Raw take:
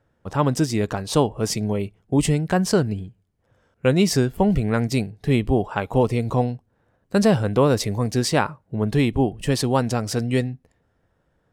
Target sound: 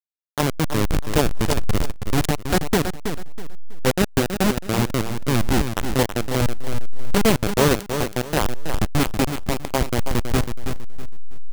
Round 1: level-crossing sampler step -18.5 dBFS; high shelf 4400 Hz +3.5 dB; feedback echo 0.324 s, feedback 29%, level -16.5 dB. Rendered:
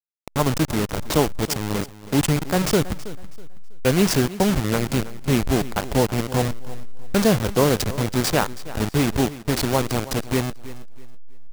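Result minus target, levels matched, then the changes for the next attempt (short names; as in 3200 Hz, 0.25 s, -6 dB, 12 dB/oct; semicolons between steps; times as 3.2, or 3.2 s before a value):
level-crossing sampler: distortion -12 dB; echo-to-direct -8.5 dB
change: level-crossing sampler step -11.5 dBFS; change: feedback echo 0.324 s, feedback 29%, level -8 dB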